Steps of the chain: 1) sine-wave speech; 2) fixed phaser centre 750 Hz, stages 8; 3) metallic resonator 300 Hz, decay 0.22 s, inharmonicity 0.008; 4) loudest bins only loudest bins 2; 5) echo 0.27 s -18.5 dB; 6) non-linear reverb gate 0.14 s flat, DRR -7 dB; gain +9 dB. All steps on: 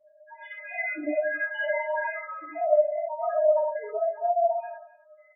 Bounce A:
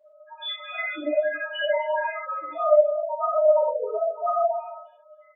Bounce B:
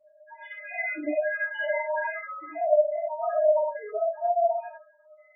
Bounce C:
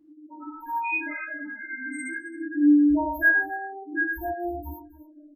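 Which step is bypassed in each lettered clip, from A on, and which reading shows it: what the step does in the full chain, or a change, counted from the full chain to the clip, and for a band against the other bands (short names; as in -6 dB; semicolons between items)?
2, 2 kHz band -3.5 dB; 5, momentary loudness spread change -2 LU; 1, 250 Hz band +20.5 dB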